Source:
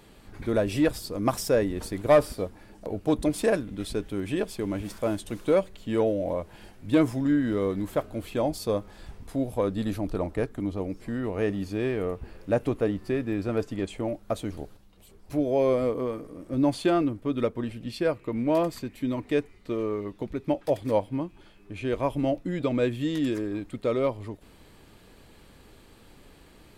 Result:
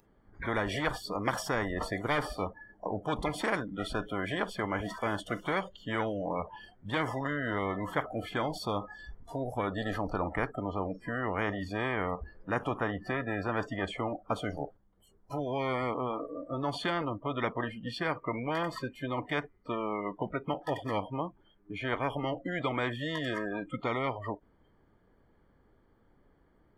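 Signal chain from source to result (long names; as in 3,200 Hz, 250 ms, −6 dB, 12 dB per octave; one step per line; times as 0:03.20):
Savitzky-Golay smoothing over 41 samples
noise reduction from a noise print of the clip's start 28 dB
every bin compressed towards the loudest bin 4 to 1
level −5 dB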